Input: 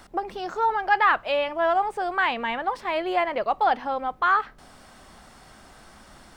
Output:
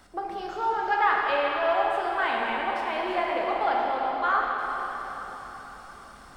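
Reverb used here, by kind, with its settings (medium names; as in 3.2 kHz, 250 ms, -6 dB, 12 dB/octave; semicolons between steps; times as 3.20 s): plate-style reverb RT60 4.4 s, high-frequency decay 0.9×, DRR -3 dB; trim -6.5 dB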